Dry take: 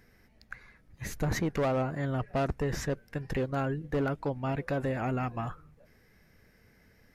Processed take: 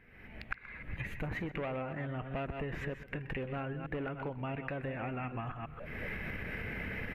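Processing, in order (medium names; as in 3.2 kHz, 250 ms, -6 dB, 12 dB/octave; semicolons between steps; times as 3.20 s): chunks repeated in reverse 138 ms, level -11 dB; recorder AGC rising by 46 dB/s; resonant high shelf 3.8 kHz -13.5 dB, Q 3; compression, threshold -32 dBFS, peak gain reduction 12 dB; delay 127 ms -17 dB; trim -3 dB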